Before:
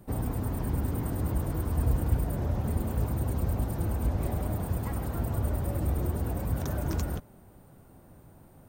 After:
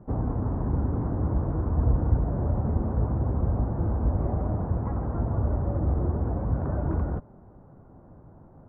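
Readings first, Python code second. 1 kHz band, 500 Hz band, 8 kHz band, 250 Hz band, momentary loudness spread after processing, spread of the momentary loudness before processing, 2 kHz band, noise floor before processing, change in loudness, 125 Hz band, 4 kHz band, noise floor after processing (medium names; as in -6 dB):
+3.0 dB, +3.5 dB, under -35 dB, +3.5 dB, 3 LU, 3 LU, no reading, -54 dBFS, +3.5 dB, +3.5 dB, under -25 dB, -51 dBFS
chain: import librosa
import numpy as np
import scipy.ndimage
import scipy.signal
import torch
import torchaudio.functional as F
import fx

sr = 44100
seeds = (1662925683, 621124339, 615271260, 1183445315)

y = scipy.signal.sosfilt(scipy.signal.butter(4, 1300.0, 'lowpass', fs=sr, output='sos'), x)
y = F.gain(torch.from_numpy(y), 3.5).numpy()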